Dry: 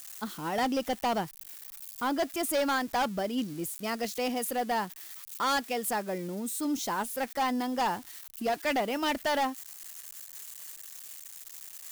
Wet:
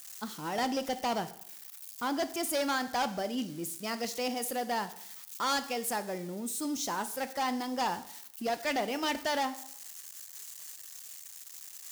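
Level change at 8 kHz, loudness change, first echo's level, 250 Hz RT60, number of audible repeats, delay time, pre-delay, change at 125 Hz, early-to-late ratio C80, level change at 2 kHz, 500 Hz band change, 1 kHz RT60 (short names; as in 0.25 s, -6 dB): 0.0 dB, -2.5 dB, none, 0.70 s, none, none, 6 ms, -3.0 dB, 17.0 dB, -2.0 dB, -3.0 dB, 0.65 s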